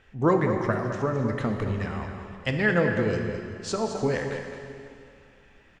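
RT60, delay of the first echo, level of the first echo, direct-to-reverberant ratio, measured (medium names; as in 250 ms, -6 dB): 2.4 s, 214 ms, -9.0 dB, 2.5 dB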